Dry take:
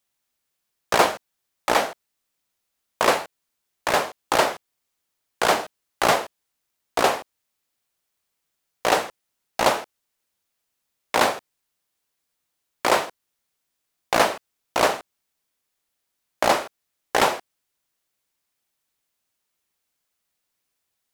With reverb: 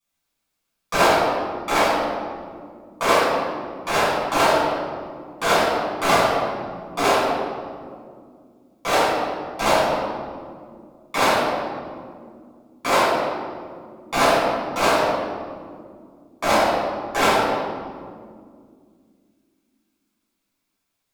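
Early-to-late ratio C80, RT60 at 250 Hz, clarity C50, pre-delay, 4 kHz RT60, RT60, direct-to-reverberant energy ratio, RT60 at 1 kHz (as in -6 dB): 0.5 dB, 3.6 s, -1.5 dB, 6 ms, 1.1 s, 2.2 s, -12.5 dB, 1.8 s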